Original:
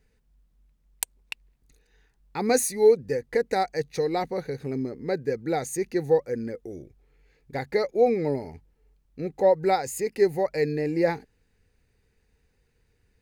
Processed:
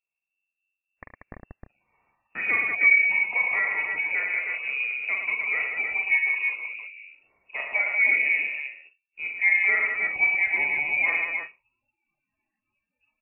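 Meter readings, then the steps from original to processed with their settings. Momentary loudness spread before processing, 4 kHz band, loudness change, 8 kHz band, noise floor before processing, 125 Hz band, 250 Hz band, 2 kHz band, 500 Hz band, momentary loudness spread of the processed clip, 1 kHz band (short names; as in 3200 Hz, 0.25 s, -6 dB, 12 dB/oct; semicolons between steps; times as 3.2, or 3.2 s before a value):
15 LU, n/a, +3.5 dB, under -40 dB, -69 dBFS, under -20 dB, under -20 dB, +18.5 dB, -22.0 dB, 14 LU, -8.5 dB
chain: tapped delay 45/75/110/187/312/341 ms -4.5/-12.5/-5/-5.5/-5.5/-16.5 dB; inverted band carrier 2700 Hz; spectral noise reduction 25 dB; gain -3 dB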